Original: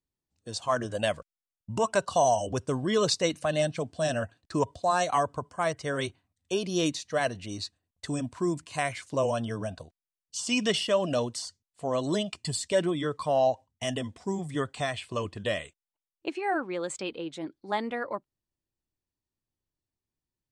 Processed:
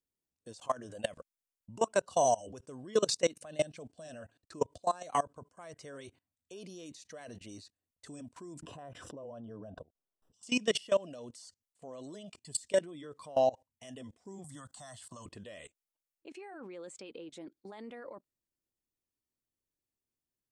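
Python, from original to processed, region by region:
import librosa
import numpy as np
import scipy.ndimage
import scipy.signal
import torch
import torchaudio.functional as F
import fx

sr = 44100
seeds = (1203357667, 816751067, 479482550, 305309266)

y = fx.chain(x, sr, fx.moving_average(points=20),
    fx.pre_swell(db_per_s=81.0), at=(8.62, 10.43))
y = fx.chain(y, sr, fx.high_shelf(hz=2400.0, db=7.5),
    fx.fixed_phaser(hz=1000.0, stages=4),
    fx.band_squash(depth_pct=70), at=(14.44, 15.26))
y = fx.high_shelf(y, sr, hz=2100.0, db=9.5)
y = fx.level_steps(y, sr, step_db=22)
y = fx.graphic_eq(y, sr, hz=(250, 500, 4000), db=(5, 6, -4))
y = y * 10.0 ** (-6.5 / 20.0)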